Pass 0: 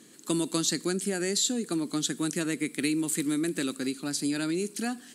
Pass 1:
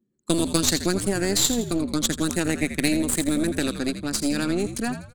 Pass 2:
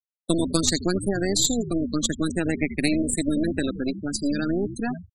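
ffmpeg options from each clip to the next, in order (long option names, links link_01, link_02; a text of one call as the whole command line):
ffmpeg -i in.wav -filter_complex "[0:a]anlmdn=2.51,aeval=exprs='0.237*(cos(1*acos(clip(val(0)/0.237,-1,1)))-cos(1*PI/2))+0.0422*(cos(2*acos(clip(val(0)/0.237,-1,1)))-cos(2*PI/2))+0.0266*(cos(3*acos(clip(val(0)/0.237,-1,1)))-cos(3*PI/2))+0.0211*(cos(6*acos(clip(val(0)/0.237,-1,1)))-cos(6*PI/2))+0.00668*(cos(8*acos(clip(val(0)/0.237,-1,1)))-cos(8*PI/2))':channel_layout=same,asplit=5[link_01][link_02][link_03][link_04][link_05];[link_02]adelay=83,afreqshift=-74,volume=-10dB[link_06];[link_03]adelay=166,afreqshift=-148,volume=-18.2dB[link_07];[link_04]adelay=249,afreqshift=-222,volume=-26.4dB[link_08];[link_05]adelay=332,afreqshift=-296,volume=-34.5dB[link_09];[link_01][link_06][link_07][link_08][link_09]amix=inputs=5:normalize=0,volume=7.5dB" out.wav
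ffmpeg -i in.wav -af "afftfilt=real='re*gte(hypot(re,im),0.0708)':imag='im*gte(hypot(re,im),0.0708)':win_size=1024:overlap=0.75" out.wav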